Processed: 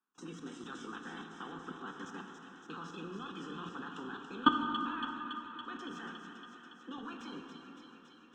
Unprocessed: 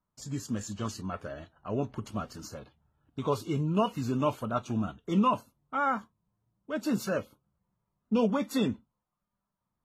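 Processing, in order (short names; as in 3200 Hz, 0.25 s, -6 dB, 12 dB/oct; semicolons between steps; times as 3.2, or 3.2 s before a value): spectral limiter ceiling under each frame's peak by 16 dB; steep high-pass 150 Hz 48 dB/oct; notches 50/100/150/200 Hz; level quantiser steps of 23 dB; transient shaper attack +2 dB, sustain -11 dB; fixed phaser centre 2600 Hz, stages 8; varispeed +18%; air absorption 210 m; thin delay 0.281 s, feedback 76%, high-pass 2200 Hz, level -6.5 dB; plate-style reverb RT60 4.4 s, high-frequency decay 0.35×, DRR 3 dB; gain +5.5 dB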